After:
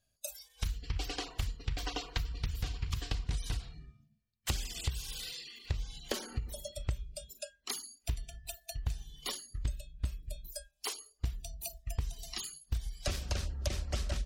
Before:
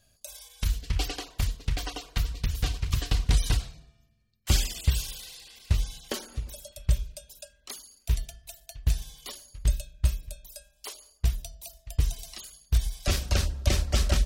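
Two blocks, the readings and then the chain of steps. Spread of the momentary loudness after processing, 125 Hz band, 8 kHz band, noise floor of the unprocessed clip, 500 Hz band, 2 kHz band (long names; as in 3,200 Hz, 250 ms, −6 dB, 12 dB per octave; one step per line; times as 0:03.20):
7 LU, −9.5 dB, −6.0 dB, −66 dBFS, −5.0 dB, −6.5 dB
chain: noise reduction from a noise print of the clip's start 18 dB
downward compressor 10 to 1, threshold −35 dBFS, peak gain reduction 18.5 dB
highs frequency-modulated by the lows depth 0.19 ms
level +4 dB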